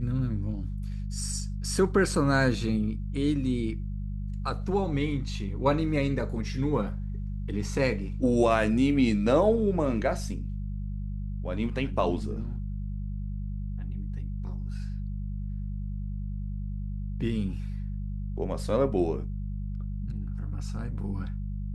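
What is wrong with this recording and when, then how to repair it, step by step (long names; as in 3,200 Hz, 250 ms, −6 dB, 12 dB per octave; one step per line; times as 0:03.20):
mains hum 50 Hz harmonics 4 −33 dBFS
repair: hum removal 50 Hz, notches 4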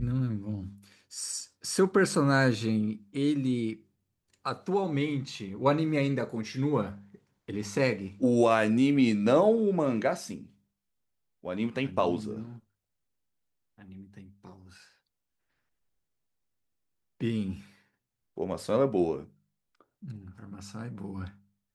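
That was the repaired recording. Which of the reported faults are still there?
none of them is left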